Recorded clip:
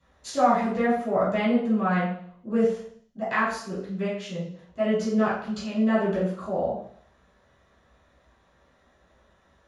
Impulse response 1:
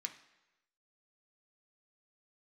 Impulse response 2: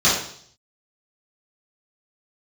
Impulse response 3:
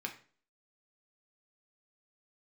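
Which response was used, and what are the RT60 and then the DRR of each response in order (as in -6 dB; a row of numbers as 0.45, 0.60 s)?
2; 1.0, 0.60, 0.40 s; 4.0, -11.0, 1.5 dB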